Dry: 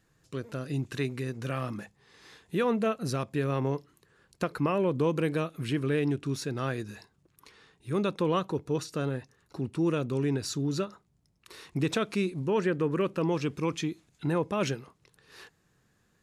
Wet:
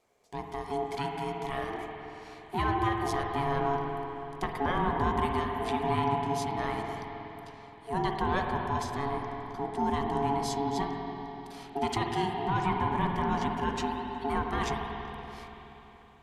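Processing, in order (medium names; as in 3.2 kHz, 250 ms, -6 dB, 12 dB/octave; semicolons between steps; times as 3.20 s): ring modulator 560 Hz; spring tank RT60 3.7 s, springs 47/53 ms, chirp 65 ms, DRR 1.5 dB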